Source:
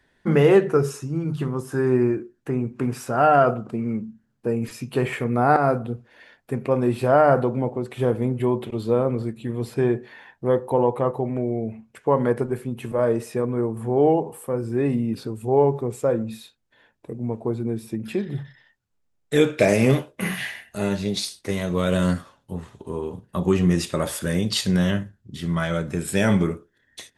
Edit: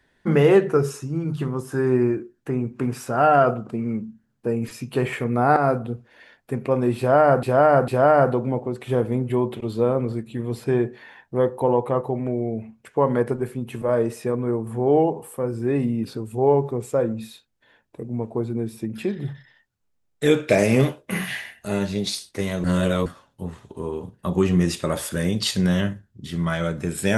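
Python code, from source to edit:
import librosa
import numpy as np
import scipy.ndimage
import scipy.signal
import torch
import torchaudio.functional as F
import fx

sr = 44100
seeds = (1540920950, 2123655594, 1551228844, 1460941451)

y = fx.edit(x, sr, fx.repeat(start_s=6.98, length_s=0.45, count=3),
    fx.reverse_span(start_s=21.74, length_s=0.42), tone=tone)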